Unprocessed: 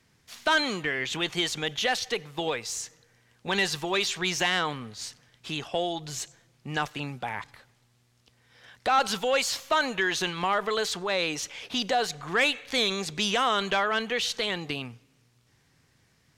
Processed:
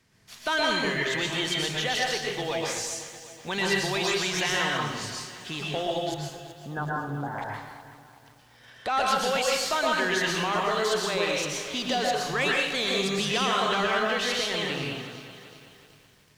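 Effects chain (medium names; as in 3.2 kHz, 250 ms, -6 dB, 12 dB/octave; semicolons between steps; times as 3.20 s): 6.14–7.38 s: elliptic low-pass 1.6 kHz; in parallel at -1.5 dB: peak limiter -23.5 dBFS, peak gain reduction 9.5 dB; on the sum: plate-style reverb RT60 0.81 s, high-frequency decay 0.75×, pre-delay 105 ms, DRR -2.5 dB; bit-crushed delay 376 ms, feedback 55%, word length 7-bit, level -13.5 dB; trim -6.5 dB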